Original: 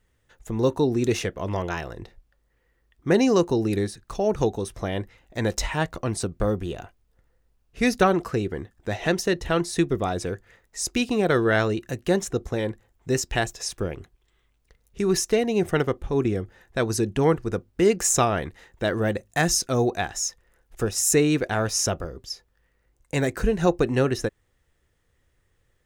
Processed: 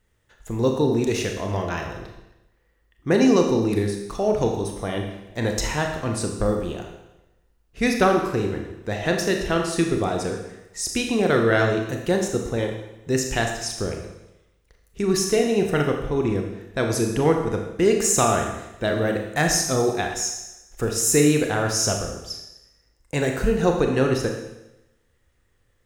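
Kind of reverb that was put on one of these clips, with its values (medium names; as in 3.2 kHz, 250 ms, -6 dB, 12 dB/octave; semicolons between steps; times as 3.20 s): Schroeder reverb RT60 0.93 s, combs from 27 ms, DRR 2.5 dB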